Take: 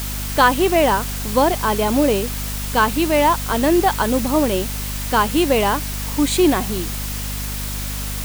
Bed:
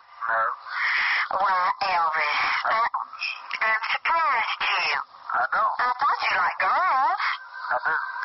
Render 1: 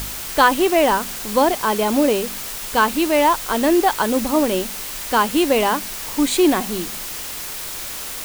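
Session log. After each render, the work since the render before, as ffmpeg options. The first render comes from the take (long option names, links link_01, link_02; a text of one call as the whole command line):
ffmpeg -i in.wav -af "bandreject=frequency=50:width_type=h:width=4,bandreject=frequency=100:width_type=h:width=4,bandreject=frequency=150:width_type=h:width=4,bandreject=frequency=200:width_type=h:width=4,bandreject=frequency=250:width_type=h:width=4" out.wav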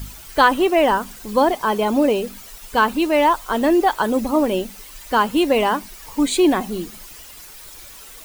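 ffmpeg -i in.wav -af "afftdn=noise_reduction=13:noise_floor=-30" out.wav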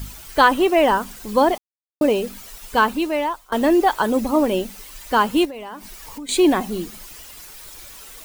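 ffmpeg -i in.wav -filter_complex "[0:a]asettb=1/sr,asplit=3[link_01][link_02][link_03];[link_01]atrim=end=5.454[link_04];[link_02]atrim=start=5.45:end=6.29,asetpts=PTS-STARTPTS,afade=type=in:duration=0.004:curve=qsin,afade=type=out:start_time=0.836:duration=0.004:curve=qsin,acompressor=threshold=-32dB:ratio=6:attack=3.2:release=140:knee=1:detection=peak[link_05];[link_03]atrim=start=6.286[link_06];[link_04][link_05]acrossfade=duration=0.004:curve1=hsin:curve2=qsin[link_07];[link_07][link_06]acrossfade=duration=0.004:curve1=qsin:curve2=hsin,asplit=4[link_08][link_09][link_10][link_11];[link_08]atrim=end=1.58,asetpts=PTS-STARTPTS,afade=type=out:start_time=1.576:duration=0.004:curve=hsin[link_12];[link_09]atrim=start=1.58:end=2.01,asetpts=PTS-STARTPTS,volume=0[link_13];[link_10]atrim=start=2.01:end=3.52,asetpts=PTS-STARTPTS,afade=type=in:duration=0.004:curve=hsin,afade=type=out:start_time=0.79:duration=0.72:silence=0.0841395[link_14];[link_11]atrim=start=3.52,asetpts=PTS-STARTPTS,afade=type=in:duration=0.004:curve=hsin:silence=0.0841395[link_15];[link_12][link_13][link_14][link_15]concat=n=4:v=0:a=1" out.wav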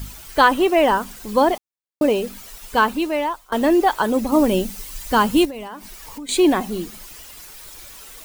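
ffmpeg -i in.wav -filter_complex "[0:a]asettb=1/sr,asplit=3[link_01][link_02][link_03];[link_01]atrim=end=4.324[link_04];[link_02]atrim=start=4.32:end=5.68,asetpts=PTS-STARTPTS,afade=type=in:duration=0.004:curve=qsin,afade=type=out:start_time=1.356:duration=0.004:curve=qsin,bass=frequency=250:gain=8,treble=frequency=4000:gain=5[link_05];[link_03]atrim=start=5.676[link_06];[link_04][link_05]acrossfade=duration=0.004:curve1=hsin:curve2=qsin[link_07];[link_07][link_06]acrossfade=duration=0.004:curve1=qsin:curve2=hsin" out.wav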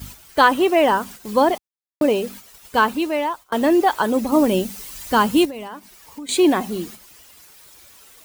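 ffmpeg -i in.wav -af "agate=range=-7dB:threshold=-36dB:ratio=16:detection=peak,highpass=65" out.wav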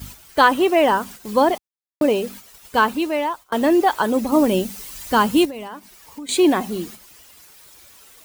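ffmpeg -i in.wav -af anull out.wav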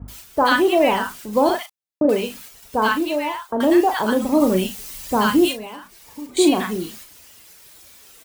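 ffmpeg -i in.wav -filter_complex "[0:a]asplit=2[link_01][link_02];[link_02]adelay=37,volume=-8.5dB[link_03];[link_01][link_03]amix=inputs=2:normalize=0,acrossover=split=1100[link_04][link_05];[link_05]adelay=80[link_06];[link_04][link_06]amix=inputs=2:normalize=0" out.wav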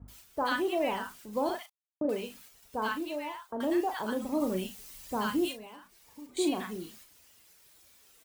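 ffmpeg -i in.wav -af "volume=-13.5dB" out.wav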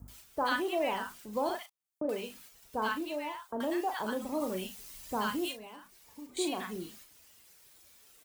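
ffmpeg -i in.wav -filter_complex "[0:a]acrossover=split=480|6100[link_01][link_02][link_03];[link_01]alimiter=level_in=7.5dB:limit=-24dB:level=0:latency=1:release=320,volume=-7.5dB[link_04];[link_03]acompressor=mode=upward:threshold=-57dB:ratio=2.5[link_05];[link_04][link_02][link_05]amix=inputs=3:normalize=0" out.wav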